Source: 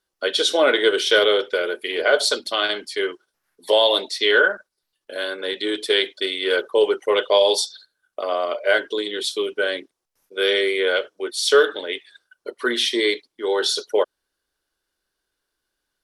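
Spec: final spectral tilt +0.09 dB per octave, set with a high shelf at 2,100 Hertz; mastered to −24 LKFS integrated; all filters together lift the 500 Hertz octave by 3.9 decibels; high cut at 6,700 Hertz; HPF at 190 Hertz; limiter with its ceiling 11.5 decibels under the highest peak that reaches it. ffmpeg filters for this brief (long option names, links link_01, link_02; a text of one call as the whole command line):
ffmpeg -i in.wav -af "highpass=190,lowpass=6700,equalizer=frequency=500:width_type=o:gain=4.5,highshelf=frequency=2100:gain=5.5,volume=-2dB,alimiter=limit=-14dB:level=0:latency=1" out.wav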